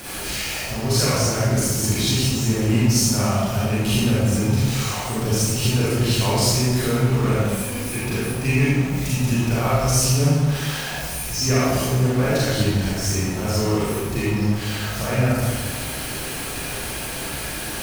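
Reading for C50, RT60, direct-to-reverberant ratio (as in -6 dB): -4.5 dB, 1.4 s, -9.5 dB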